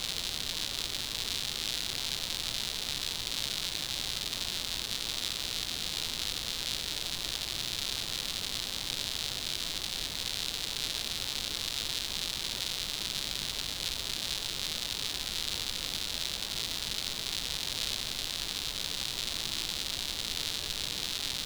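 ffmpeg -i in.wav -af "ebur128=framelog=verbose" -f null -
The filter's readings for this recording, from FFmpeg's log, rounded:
Integrated loudness:
  I:         -32.3 LUFS
  Threshold: -42.3 LUFS
Loudness range:
  LRA:         0.4 LU
  Threshold: -52.3 LUFS
  LRA low:   -32.5 LUFS
  LRA high:  -32.0 LUFS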